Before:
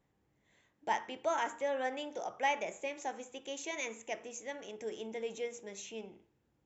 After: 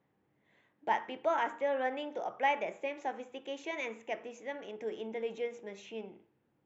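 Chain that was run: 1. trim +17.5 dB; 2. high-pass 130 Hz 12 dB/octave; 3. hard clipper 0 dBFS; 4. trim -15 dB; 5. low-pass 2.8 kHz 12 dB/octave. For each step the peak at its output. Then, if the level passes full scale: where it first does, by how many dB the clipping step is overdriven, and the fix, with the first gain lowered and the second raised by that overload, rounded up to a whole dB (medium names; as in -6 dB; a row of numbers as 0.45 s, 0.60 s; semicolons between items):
-2.0 dBFS, -2.0 dBFS, -2.0 dBFS, -17.0 dBFS, -17.5 dBFS; nothing clips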